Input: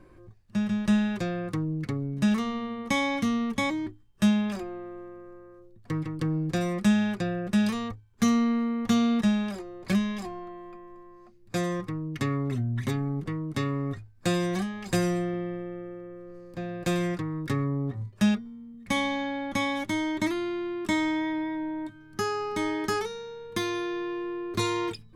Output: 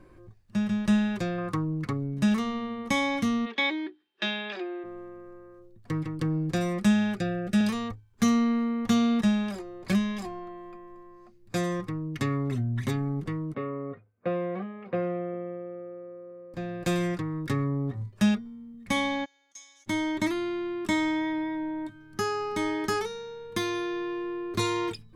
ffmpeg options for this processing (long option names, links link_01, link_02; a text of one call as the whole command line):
ffmpeg -i in.wav -filter_complex "[0:a]asettb=1/sr,asplit=3[link_01][link_02][link_03];[link_01]atrim=end=1.384[link_04];[link_02]atrim=start=1.38:end=1.93,asetpts=PTS-STARTPTS,afade=type=in:duration=0.004:curve=qsin,afade=type=out:start_time=0.546:duration=0.004:curve=qsin,equalizer=frequency=1100:width_type=o:width=0.69:gain=9.5[link_05];[link_03]atrim=start=1.926[link_06];[link_04][link_05]acrossfade=duration=0.004:curve1=hsin:curve2=qsin[link_07];[link_07][link_06]acrossfade=duration=0.004:curve1=qsin:curve2=hsin,asplit=3[link_08][link_09][link_10];[link_08]afade=type=out:start_time=3.45:duration=0.02[link_11];[link_09]highpass=frequency=330:width=0.5412,highpass=frequency=330:width=1.3066,equalizer=frequency=350:width_type=q:width=4:gain=5,equalizer=frequency=530:width_type=q:width=4:gain=-3,equalizer=frequency=1100:width_type=q:width=4:gain=-5,equalizer=frequency=1700:width_type=q:width=4:gain=6,equalizer=frequency=2500:width_type=q:width=4:gain=6,equalizer=frequency=3600:width_type=q:width=4:gain=8,lowpass=frequency=4500:width=0.5412,lowpass=frequency=4500:width=1.3066,afade=type=in:start_time=3.45:duration=0.02,afade=type=out:start_time=4.83:duration=0.02[link_12];[link_10]afade=type=in:start_time=4.83:duration=0.02[link_13];[link_11][link_12][link_13]amix=inputs=3:normalize=0,asettb=1/sr,asplit=3[link_14][link_15][link_16];[link_14]atrim=end=7.154[link_17];[link_15]atrim=start=7.15:end=7.61,asetpts=PTS-STARTPTS,afade=type=in:duration=0.004:curve=qsin,afade=type=out:start_time=0.456:duration=0.004:curve=qsin,asuperstop=centerf=1000:order=20:qfactor=3.3[link_18];[link_16]atrim=start=7.606[link_19];[link_17][link_18]acrossfade=duration=0.004:curve1=hsin:curve2=qsin[link_20];[link_20][link_19]acrossfade=duration=0.004:curve1=qsin:curve2=hsin,asettb=1/sr,asplit=3[link_21][link_22][link_23];[link_21]atrim=end=13.544[link_24];[link_22]atrim=start=13.54:end=16.54,asetpts=PTS-STARTPTS,afade=type=in:duration=0.004:curve=qsin,afade=type=out:start_time=2.996:duration=0.004:curve=qsin,highpass=250,equalizer=frequency=320:width_type=q:width=4:gain=-8,equalizer=frequency=490:width_type=q:width=4:gain=8,equalizer=frequency=870:width_type=q:width=4:gain=-8,equalizer=frequency=1700:width_type=q:width=4:gain=-10,lowpass=frequency=2000:width=0.5412,lowpass=frequency=2000:width=1.3066[link_25];[link_23]atrim=start=16.536[link_26];[link_24][link_25]acrossfade=duration=0.004:curve1=hsin:curve2=qsin[link_27];[link_27][link_26]acrossfade=duration=0.004:curve1=qsin:curve2=hsin,asplit=3[link_28][link_29][link_30];[link_28]afade=type=out:start_time=19.24:duration=0.02[link_31];[link_29]bandpass=frequency=6500:width_type=q:width=7.2,afade=type=in:start_time=19.24:duration=0.02,afade=type=out:start_time=19.86:duration=0.02[link_32];[link_30]afade=type=in:start_time=19.86:duration=0.02[link_33];[link_31][link_32][link_33]amix=inputs=3:normalize=0" out.wav